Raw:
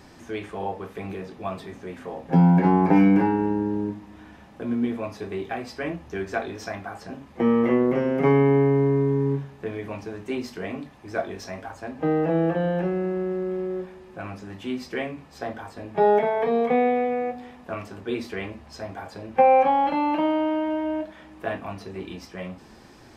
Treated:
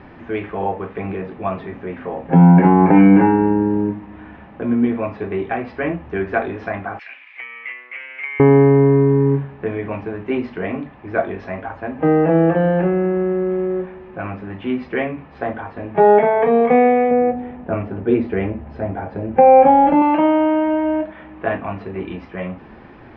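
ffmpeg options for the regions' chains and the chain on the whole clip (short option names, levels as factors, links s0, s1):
-filter_complex "[0:a]asettb=1/sr,asplit=3[s0][s1][s2];[s0]atrim=end=6.994[s3];[s1]atrim=start=6.99:end=8.4,asetpts=PTS-STARTPTS,afade=t=in:d=0.004:c=qsin,afade=t=out:st=1.406:d=0.004:c=qsin,highshelf=f=3800:g=6,acompressor=threshold=0.0447:ratio=12:attack=3.2:release=140:knee=1:detection=peak,highpass=f=2300:t=q:w=6[s4];[s2]atrim=start=8.396[s5];[s3][s4]acrossfade=d=0.004:c1=hsin:c2=qsin[s6];[s6][s5]acrossfade=d=0.004:c1=qsin:c2=hsin,asettb=1/sr,asplit=3[s7][s8][s9];[s7]atrim=end=17.114[s10];[s8]atrim=start=17.11:end=20.02,asetpts=PTS-STARTPTS,afade=t=in:d=0.004:c=qsin,afade=t=out:st=2.906:d=0.004:c=qsin,tiltshelf=f=930:g=6,bandreject=f=1100:w=8.8[s11];[s9]atrim=start=20.016[s12];[s10][s11]acrossfade=d=0.004:c1=hsin:c2=qsin[s13];[s13][s12]acrossfade=d=0.004:c1=qsin:c2=hsin,lowpass=f=2600:w=0.5412,lowpass=f=2600:w=1.3066,alimiter=level_in=2.82:limit=0.891:release=50:level=0:latency=1,volume=0.891"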